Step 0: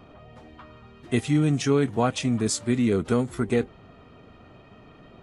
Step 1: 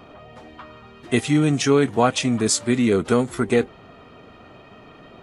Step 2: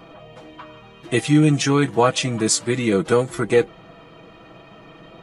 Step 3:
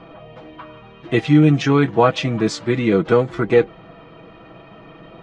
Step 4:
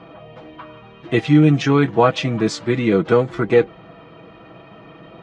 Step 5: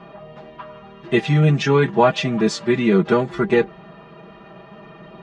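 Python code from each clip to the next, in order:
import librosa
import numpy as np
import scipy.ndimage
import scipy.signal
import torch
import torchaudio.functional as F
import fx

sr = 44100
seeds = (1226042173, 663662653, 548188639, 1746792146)

y1 = fx.low_shelf(x, sr, hz=210.0, db=-8.5)
y1 = y1 * 10.0 ** (7.0 / 20.0)
y2 = y1 + 0.65 * np.pad(y1, (int(6.1 * sr / 1000.0), 0))[:len(y1)]
y3 = fx.air_absorb(y2, sr, metres=210.0)
y3 = y3 * 10.0 ** (3.0 / 20.0)
y4 = scipy.signal.sosfilt(scipy.signal.butter(2, 47.0, 'highpass', fs=sr, output='sos'), y3)
y5 = y4 + 0.81 * np.pad(y4, (int(5.0 * sr / 1000.0), 0))[:len(y4)]
y5 = y5 * 10.0 ** (-1.5 / 20.0)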